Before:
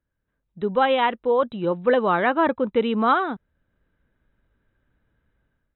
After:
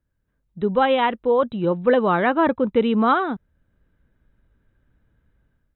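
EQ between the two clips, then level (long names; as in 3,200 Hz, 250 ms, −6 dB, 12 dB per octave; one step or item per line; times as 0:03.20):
low-shelf EQ 280 Hz +7 dB
0.0 dB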